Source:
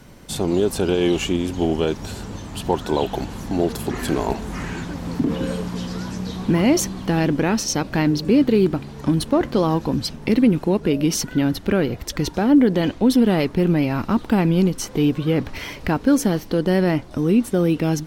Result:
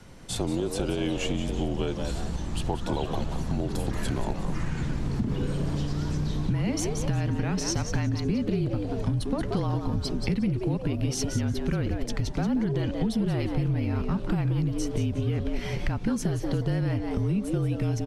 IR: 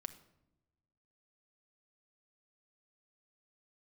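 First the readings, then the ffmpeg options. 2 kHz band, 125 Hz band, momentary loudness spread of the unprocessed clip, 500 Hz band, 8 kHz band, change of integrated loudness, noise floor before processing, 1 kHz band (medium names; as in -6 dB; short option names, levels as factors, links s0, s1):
-9.5 dB, -2.0 dB, 11 LU, -11.0 dB, -7.5 dB, -8.0 dB, -38 dBFS, -10.0 dB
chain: -filter_complex "[0:a]lowpass=f=11000:w=0.5412,lowpass=f=11000:w=1.3066,asubboost=boost=5:cutoff=150,asplit=2[s0][s1];[s1]asplit=4[s2][s3][s4][s5];[s2]adelay=180,afreqshift=150,volume=0.335[s6];[s3]adelay=360,afreqshift=300,volume=0.114[s7];[s4]adelay=540,afreqshift=450,volume=0.0389[s8];[s5]adelay=720,afreqshift=600,volume=0.0132[s9];[s6][s7][s8][s9]amix=inputs=4:normalize=0[s10];[s0][s10]amix=inputs=2:normalize=0,afreqshift=-36,acompressor=threshold=0.1:ratio=6,volume=0.668"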